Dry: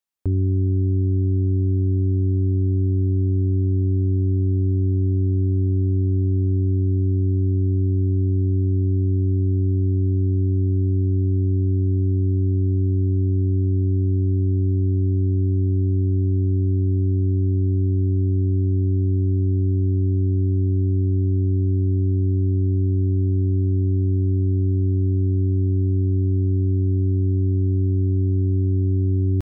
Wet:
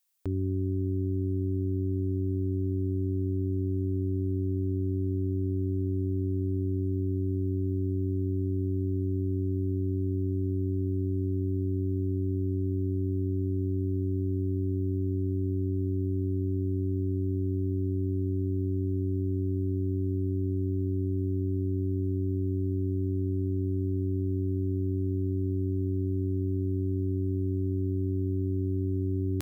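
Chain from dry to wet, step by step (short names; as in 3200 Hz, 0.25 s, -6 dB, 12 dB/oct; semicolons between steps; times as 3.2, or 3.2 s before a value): tilt +3.5 dB/oct; gain +1 dB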